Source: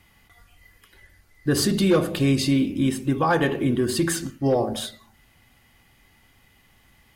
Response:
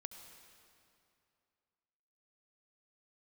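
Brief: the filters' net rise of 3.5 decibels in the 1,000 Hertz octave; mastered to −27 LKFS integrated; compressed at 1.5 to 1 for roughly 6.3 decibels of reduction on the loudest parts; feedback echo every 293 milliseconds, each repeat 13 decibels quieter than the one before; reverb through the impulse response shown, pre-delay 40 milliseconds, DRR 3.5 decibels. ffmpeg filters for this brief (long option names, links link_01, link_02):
-filter_complex "[0:a]equalizer=frequency=1000:width_type=o:gain=4.5,acompressor=threshold=-32dB:ratio=1.5,aecho=1:1:293|586|879:0.224|0.0493|0.0108,asplit=2[link_01][link_02];[1:a]atrim=start_sample=2205,adelay=40[link_03];[link_02][link_03]afir=irnorm=-1:irlink=0,volume=1dB[link_04];[link_01][link_04]amix=inputs=2:normalize=0,volume=-1dB"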